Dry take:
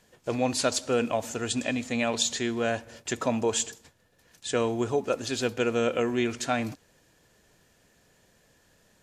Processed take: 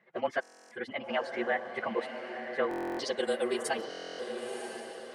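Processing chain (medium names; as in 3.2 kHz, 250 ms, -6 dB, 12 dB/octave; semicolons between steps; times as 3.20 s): frequency axis rescaled in octaves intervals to 108%; elliptic high-pass 160 Hz, stop band 70 dB; reverb removal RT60 1 s; peaking EQ 250 Hz -14.5 dB 0.21 oct; time stretch by phase-locked vocoder 0.57×; low-pass sweep 1.9 kHz -> 10 kHz, 2.74–3.32 s; echo that smears into a reverb 987 ms, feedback 50%, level -7 dB; buffer glitch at 0.41/2.69/3.89 s, samples 1024, times 12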